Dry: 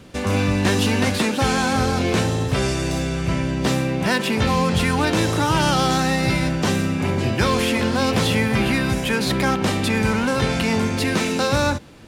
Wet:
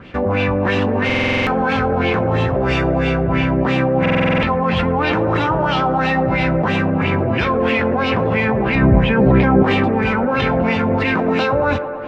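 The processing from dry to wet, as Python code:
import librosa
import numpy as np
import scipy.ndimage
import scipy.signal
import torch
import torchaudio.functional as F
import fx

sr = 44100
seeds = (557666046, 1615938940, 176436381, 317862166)

p1 = fx.filter_lfo_lowpass(x, sr, shape='sine', hz=3.0, low_hz=560.0, high_hz=2900.0, q=2.8)
p2 = fx.over_compress(p1, sr, threshold_db=-21.0, ratio=-0.5)
p3 = p1 + (p2 * librosa.db_to_amplitude(1.0))
p4 = fx.tilt_eq(p3, sr, slope=-3.0, at=(8.75, 9.63))
p5 = p4 + fx.echo_wet_bandpass(p4, sr, ms=111, feedback_pct=75, hz=620.0, wet_db=-8.0, dry=0)
p6 = fx.buffer_glitch(p5, sr, at_s=(1.05, 4.01), block=2048, repeats=8)
y = p6 * librosa.db_to_amplitude(-4.0)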